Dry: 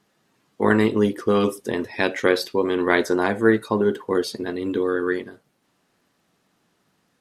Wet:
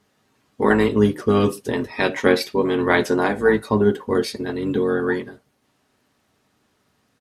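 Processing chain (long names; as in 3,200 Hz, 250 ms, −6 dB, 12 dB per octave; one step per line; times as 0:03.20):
pitch-shifted copies added −12 semitones −9 dB
notch comb filter 170 Hz
level +2.5 dB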